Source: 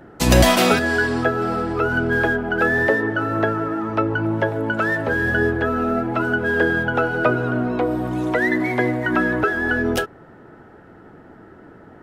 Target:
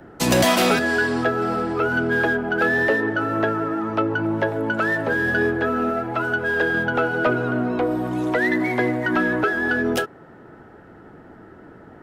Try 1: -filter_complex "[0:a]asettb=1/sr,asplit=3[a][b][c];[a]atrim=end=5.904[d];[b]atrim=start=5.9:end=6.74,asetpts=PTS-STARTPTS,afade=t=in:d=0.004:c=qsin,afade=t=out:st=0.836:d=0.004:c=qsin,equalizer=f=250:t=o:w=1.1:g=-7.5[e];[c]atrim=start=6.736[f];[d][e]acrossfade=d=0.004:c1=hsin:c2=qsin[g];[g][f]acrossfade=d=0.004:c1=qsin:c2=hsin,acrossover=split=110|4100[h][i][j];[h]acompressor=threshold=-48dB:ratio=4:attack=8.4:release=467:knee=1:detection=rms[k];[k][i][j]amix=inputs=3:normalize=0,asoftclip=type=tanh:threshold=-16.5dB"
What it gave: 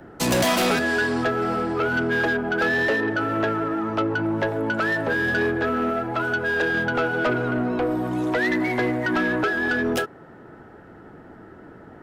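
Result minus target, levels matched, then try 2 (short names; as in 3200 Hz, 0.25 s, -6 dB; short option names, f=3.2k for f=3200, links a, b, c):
soft clip: distortion +7 dB
-filter_complex "[0:a]asettb=1/sr,asplit=3[a][b][c];[a]atrim=end=5.904[d];[b]atrim=start=5.9:end=6.74,asetpts=PTS-STARTPTS,afade=t=in:d=0.004:c=qsin,afade=t=out:st=0.836:d=0.004:c=qsin,equalizer=f=250:t=o:w=1.1:g=-7.5[e];[c]atrim=start=6.736[f];[d][e]acrossfade=d=0.004:c1=hsin:c2=qsin[g];[g][f]acrossfade=d=0.004:c1=qsin:c2=hsin,acrossover=split=110|4100[h][i][j];[h]acompressor=threshold=-48dB:ratio=4:attack=8.4:release=467:knee=1:detection=rms[k];[k][i][j]amix=inputs=3:normalize=0,asoftclip=type=tanh:threshold=-10dB"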